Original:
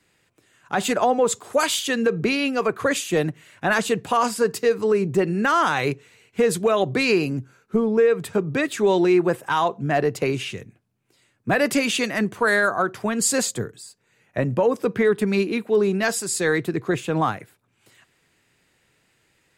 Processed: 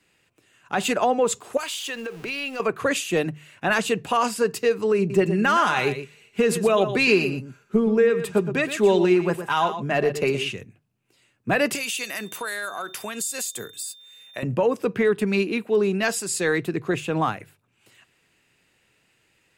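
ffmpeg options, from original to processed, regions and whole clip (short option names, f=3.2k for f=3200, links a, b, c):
-filter_complex "[0:a]asettb=1/sr,asplit=3[a][b][c];[a]atrim=end=1.574[d];[b]atrim=start=1.57:end=2.6,asetpts=PTS-STARTPTS,afade=t=in:d=0.004:c=qsin,afade=t=out:st=1.026:d=0.004:c=qsin,aeval=exprs='val(0)+0.5*0.0188*sgn(val(0))':c=same,equalizer=f=160:w=0.65:g=-12.5,acompressor=threshold=-29dB:ratio=3:attack=3.2:release=140:knee=1:detection=peak[e];[c]atrim=start=2.596[f];[d][e]acrossfade=d=0.004:c1=hsin:c2=qsin[g];[g][f]acrossfade=d=0.004:c1=qsin:c2=hsin,asettb=1/sr,asplit=3[h][i][j];[h]atrim=end=4.984[k];[i]atrim=start=4.98:end=10.52,asetpts=PTS-STARTPTS,afade=t=in:d=0.004:c=qsin,afade=t=out:st=5.536:d=0.004:c=qsin,aecho=1:1:4.9:0.39,atrim=end_sample=244314,aecho=1:1:118:0.299,atrim=end_sample=244314[l];[j]atrim=start=10.516[m];[k][l]acrossfade=d=0.004:c1=hsin:c2=qsin[n];[n][m]acrossfade=d=0.004:c1=qsin:c2=hsin,asettb=1/sr,asplit=3[o][p][q];[o]atrim=end=11.754[r];[p]atrim=start=11.75:end=14.43,asetpts=PTS-STARTPTS,afade=t=in:d=0.004:c=qsin,afade=t=out:st=2.676:d=0.004:c=qsin,aemphasis=mode=production:type=riaa,acompressor=threshold=-26dB:ratio=5:attack=3.2:release=140:knee=1:detection=peak,aeval=exprs='val(0)+0.00562*sin(2*PI*3600*n/s)':c=same[s];[q]atrim=start=14.426[t];[r][s]acrossfade=d=0.004:c1=hsin:c2=qsin[u];[u][t]acrossfade=d=0.004:c1=qsin:c2=hsin,equalizer=f=2.7k:w=5.5:g=6.5,bandreject=f=50:t=h:w=6,bandreject=f=100:t=h:w=6,bandreject=f=150:t=h:w=6,volume=-1.5dB"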